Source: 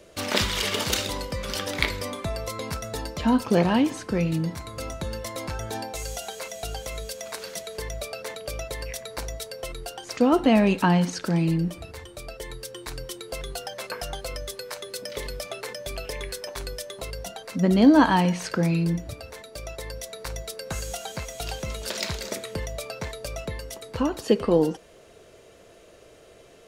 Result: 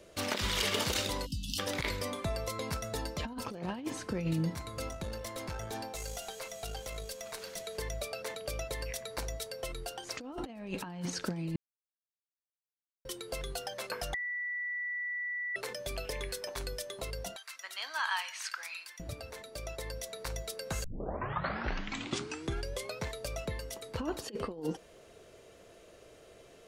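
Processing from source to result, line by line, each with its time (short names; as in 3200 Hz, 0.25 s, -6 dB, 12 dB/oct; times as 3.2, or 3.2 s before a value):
1.26–1.58 spectral delete 320–2600 Hz
4.88–7.6 tube stage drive 26 dB, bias 0.5
11.56–13.05 mute
14.14–15.56 bleep 1960 Hz -18.5 dBFS
17.36–19 HPF 1200 Hz 24 dB/oct
20.84 tape start 2.21 s
whole clip: negative-ratio compressor -25 dBFS, ratio -0.5; gain -7.5 dB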